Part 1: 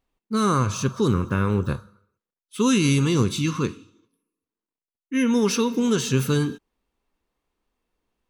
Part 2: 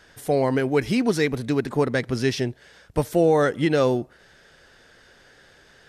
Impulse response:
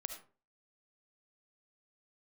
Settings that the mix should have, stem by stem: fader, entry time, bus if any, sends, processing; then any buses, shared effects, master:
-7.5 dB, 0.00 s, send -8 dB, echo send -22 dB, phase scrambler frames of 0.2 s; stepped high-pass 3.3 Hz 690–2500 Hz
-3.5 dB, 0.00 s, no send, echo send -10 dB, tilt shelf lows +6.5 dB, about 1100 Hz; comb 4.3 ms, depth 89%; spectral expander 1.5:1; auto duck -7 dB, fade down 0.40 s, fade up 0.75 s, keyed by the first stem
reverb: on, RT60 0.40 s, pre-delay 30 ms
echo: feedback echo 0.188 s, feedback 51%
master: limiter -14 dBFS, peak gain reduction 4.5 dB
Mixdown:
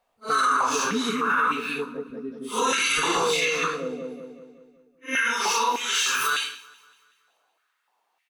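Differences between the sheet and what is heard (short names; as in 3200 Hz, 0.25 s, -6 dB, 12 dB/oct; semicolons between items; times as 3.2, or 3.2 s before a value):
stem 1 -7.5 dB -> +3.5 dB; stem 2 -3.5 dB -> -11.0 dB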